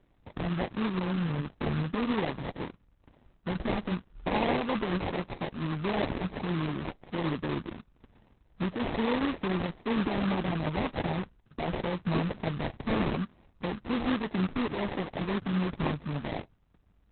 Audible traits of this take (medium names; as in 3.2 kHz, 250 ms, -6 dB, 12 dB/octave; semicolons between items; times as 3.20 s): aliases and images of a low sample rate 1.4 kHz, jitter 20%; Opus